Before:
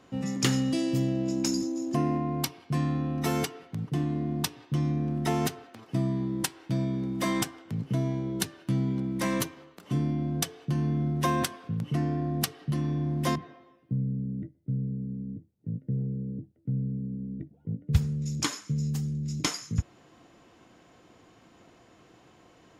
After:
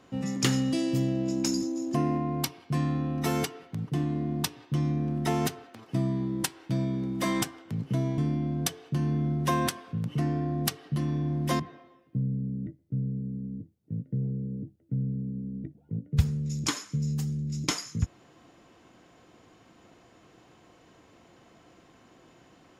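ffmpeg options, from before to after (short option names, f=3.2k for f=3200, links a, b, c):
-filter_complex "[0:a]asplit=2[a][b];[a]atrim=end=8.182[c];[b]atrim=start=9.938[d];[c][d]acrossfade=d=0.004:c1=hsin:c2=hsin"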